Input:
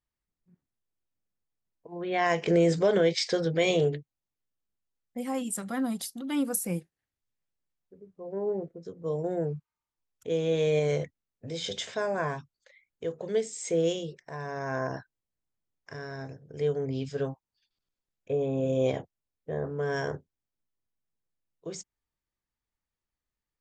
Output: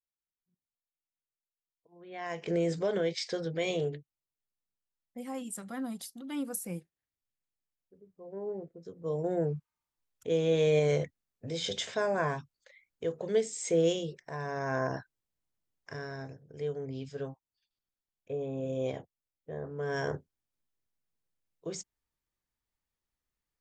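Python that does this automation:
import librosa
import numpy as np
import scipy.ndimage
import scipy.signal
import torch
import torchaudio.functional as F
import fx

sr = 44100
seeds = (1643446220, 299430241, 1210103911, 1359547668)

y = fx.gain(x, sr, db=fx.line((1.95, -19.0), (2.54, -7.0), (8.61, -7.0), (9.35, 0.0), (15.96, 0.0), (16.66, -7.0), (19.67, -7.0), (20.13, 0.0)))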